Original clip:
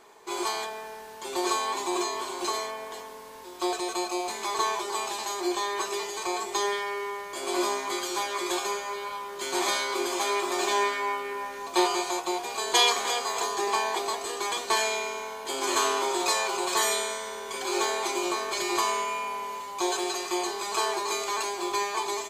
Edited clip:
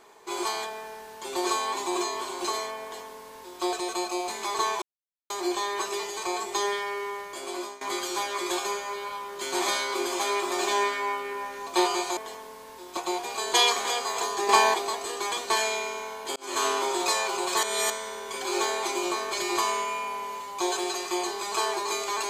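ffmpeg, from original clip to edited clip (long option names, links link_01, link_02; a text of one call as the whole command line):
ffmpeg -i in.wav -filter_complex "[0:a]asplit=11[link_01][link_02][link_03][link_04][link_05][link_06][link_07][link_08][link_09][link_10][link_11];[link_01]atrim=end=4.82,asetpts=PTS-STARTPTS,afade=type=out:start_time=4.816:duration=0.004:curve=hsin[link_12];[link_02]atrim=start=4.82:end=5.3,asetpts=PTS-STARTPTS,volume=0[link_13];[link_03]atrim=start=5.3:end=7.81,asetpts=PTS-STARTPTS,afade=type=in:duration=0.004:curve=hsin,afade=type=out:start_time=1.91:duration=0.6:silence=0.105925[link_14];[link_04]atrim=start=7.81:end=12.172,asetpts=PTS-STARTPTS,afade=type=in:duration=0.004:curve=hsin:silence=0.105925[link_15];[link_05]atrim=start=2.828:end=3.632[link_16];[link_06]atrim=start=12.168:end=13.692[link_17];[link_07]atrim=start=13.688:end=13.942,asetpts=PTS-STARTPTS,volume=7.5dB[link_18];[link_08]atrim=start=13.938:end=15.56,asetpts=PTS-STARTPTS,afade=type=out:start_time=1.618:duration=0.004:curve=hsin[link_19];[link_09]atrim=start=15.56:end=16.832,asetpts=PTS-STARTPTS,afade=type=in:duration=0.3[link_20];[link_10]atrim=start=16.828:end=17.102,asetpts=PTS-STARTPTS,areverse[link_21];[link_11]atrim=start=17.098[link_22];[link_12][link_13][link_14][link_15]concat=n=4:v=0:a=1[link_23];[link_23][link_16]acrossfade=duration=0.004:curve1=hsin:curve2=hsin[link_24];[link_24][link_17]acrossfade=duration=0.004:curve1=hsin:curve2=hsin[link_25];[link_25][link_18]acrossfade=duration=0.004:curve1=hsin:curve2=hsin[link_26];[link_19][link_20]concat=n=2:v=0:a=1[link_27];[link_26][link_27]acrossfade=duration=0.004:curve1=hsin:curve2=hsin[link_28];[link_28][link_21]acrossfade=duration=0.004:curve1=hsin:curve2=hsin[link_29];[link_29][link_22]acrossfade=duration=0.004:curve1=hsin:curve2=hsin" out.wav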